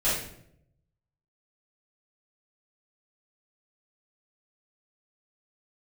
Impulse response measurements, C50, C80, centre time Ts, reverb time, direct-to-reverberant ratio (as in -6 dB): 1.5 dB, 6.0 dB, 53 ms, 0.70 s, -12.5 dB